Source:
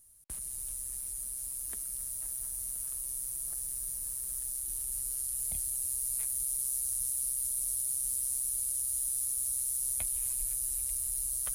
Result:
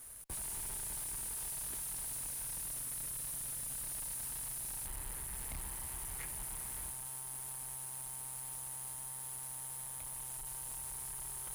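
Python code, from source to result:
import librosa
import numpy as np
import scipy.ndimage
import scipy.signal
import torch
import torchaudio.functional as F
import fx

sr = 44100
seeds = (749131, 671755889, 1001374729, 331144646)

y = fx.high_shelf_res(x, sr, hz=2900.0, db=-12.5, q=3.0, at=(4.86, 6.91))
y = fx.over_compress(y, sr, threshold_db=-39.0, ratio=-0.5)
y = fx.tube_stage(y, sr, drive_db=48.0, bias=0.65)
y = y * 10.0 ** (8.5 / 20.0)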